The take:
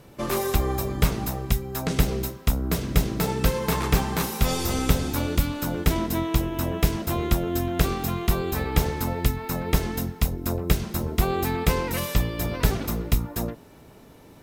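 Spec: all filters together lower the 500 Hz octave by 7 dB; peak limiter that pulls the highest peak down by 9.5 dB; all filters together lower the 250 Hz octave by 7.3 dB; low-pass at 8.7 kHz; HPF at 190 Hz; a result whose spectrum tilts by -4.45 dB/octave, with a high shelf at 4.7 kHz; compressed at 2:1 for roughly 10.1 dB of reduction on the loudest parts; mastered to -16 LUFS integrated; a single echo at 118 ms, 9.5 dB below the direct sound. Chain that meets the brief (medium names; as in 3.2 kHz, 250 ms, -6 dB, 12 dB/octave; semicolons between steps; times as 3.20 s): high-pass 190 Hz; low-pass 8.7 kHz; peaking EQ 250 Hz -5.5 dB; peaking EQ 500 Hz -7 dB; treble shelf 4.7 kHz -6 dB; compression 2:1, threshold -44 dBFS; peak limiter -31.5 dBFS; delay 118 ms -9.5 dB; trim +26.5 dB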